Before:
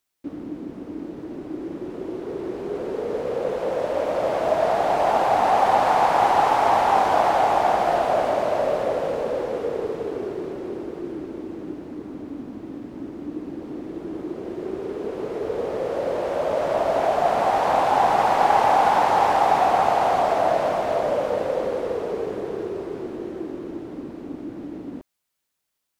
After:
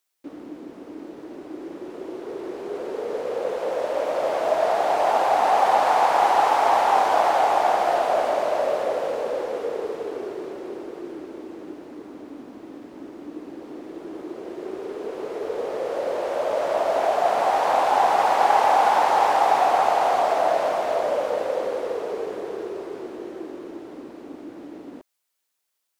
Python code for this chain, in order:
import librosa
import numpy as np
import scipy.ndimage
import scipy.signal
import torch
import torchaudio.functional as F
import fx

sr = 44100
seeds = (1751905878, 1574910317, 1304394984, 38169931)

y = fx.bass_treble(x, sr, bass_db=-14, treble_db=2)